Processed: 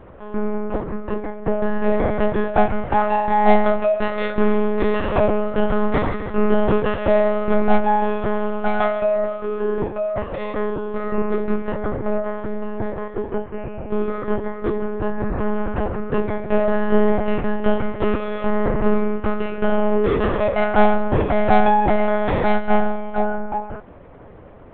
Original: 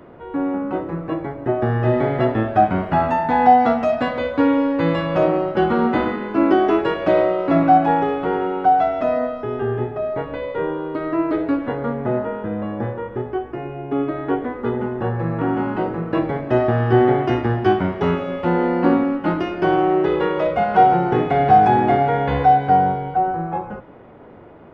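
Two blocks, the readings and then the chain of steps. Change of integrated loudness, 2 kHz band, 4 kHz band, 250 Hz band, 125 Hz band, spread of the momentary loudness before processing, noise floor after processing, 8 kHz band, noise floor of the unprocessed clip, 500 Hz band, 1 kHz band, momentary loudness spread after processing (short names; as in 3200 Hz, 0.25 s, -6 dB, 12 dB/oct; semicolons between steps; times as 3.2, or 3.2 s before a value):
-2.0 dB, +0.5 dB, -1.5 dB, -2.5 dB, -4.5 dB, 11 LU, -34 dBFS, n/a, -35 dBFS, 0.0 dB, -5.0 dB, 10 LU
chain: in parallel at -10.5 dB: hard clip -14 dBFS, distortion -11 dB; on the sum: monotone LPC vocoder at 8 kHz 210 Hz; gain -1.5 dB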